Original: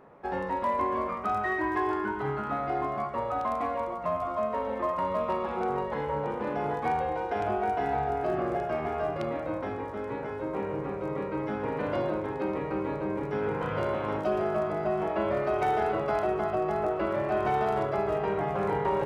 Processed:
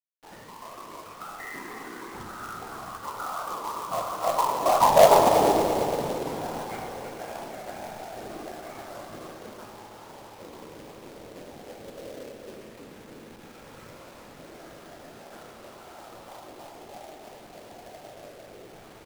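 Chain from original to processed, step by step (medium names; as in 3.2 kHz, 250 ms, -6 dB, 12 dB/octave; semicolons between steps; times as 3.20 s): Doppler pass-by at 5.18 s, 12 m/s, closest 2.4 m; treble shelf 3.6 kHz -7 dB; comb 6.1 ms, depth 87%; dynamic bell 1.2 kHz, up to +7 dB, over -49 dBFS, Q 1.1; in parallel at +1 dB: compression, threshold -51 dBFS, peak gain reduction 27 dB; on the sum: whisper effect; LFO low-pass saw down 0.16 Hz 480–4300 Hz; companded quantiser 4-bit; multi-head delay 112 ms, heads all three, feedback 58%, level -14.5 dB; on a send at -10.5 dB: reverberation RT60 0.75 s, pre-delay 18 ms; on the sum: warped record 45 rpm, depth 100 cents; trim +3.5 dB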